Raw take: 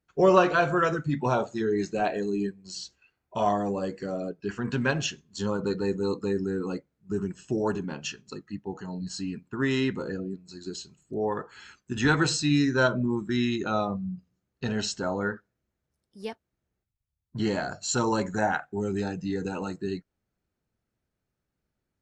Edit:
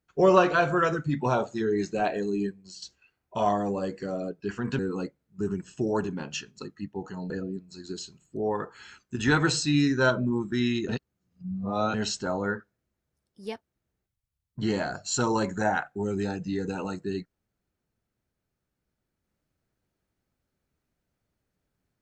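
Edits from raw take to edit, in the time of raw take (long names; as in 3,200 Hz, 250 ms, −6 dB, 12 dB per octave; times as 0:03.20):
0:02.55–0:02.82: fade out, to −11 dB
0:04.79–0:06.50: remove
0:09.01–0:10.07: remove
0:13.66–0:14.71: reverse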